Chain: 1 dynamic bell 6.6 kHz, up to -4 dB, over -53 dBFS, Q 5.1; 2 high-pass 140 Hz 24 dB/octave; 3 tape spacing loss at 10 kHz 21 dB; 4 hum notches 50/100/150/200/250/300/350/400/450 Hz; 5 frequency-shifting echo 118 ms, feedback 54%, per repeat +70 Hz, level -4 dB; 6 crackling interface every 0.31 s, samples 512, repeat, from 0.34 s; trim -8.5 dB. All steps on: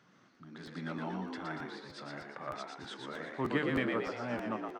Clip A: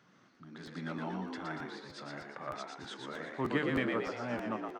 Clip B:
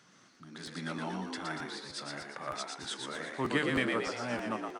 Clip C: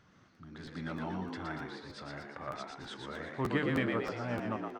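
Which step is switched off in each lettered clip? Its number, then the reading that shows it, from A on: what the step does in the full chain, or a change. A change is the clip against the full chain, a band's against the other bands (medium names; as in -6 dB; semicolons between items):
1, 8 kHz band +1.5 dB; 3, 8 kHz band +12.5 dB; 2, 125 Hz band +4.0 dB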